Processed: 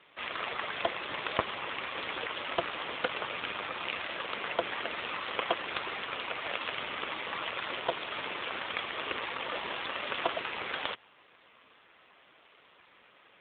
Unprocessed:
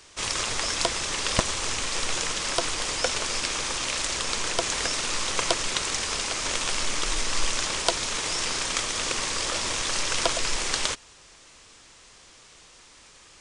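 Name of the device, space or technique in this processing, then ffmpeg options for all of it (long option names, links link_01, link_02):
telephone: -af "highpass=270,lowpass=3400" -ar 8000 -c:a libopencore_amrnb -b:a 7400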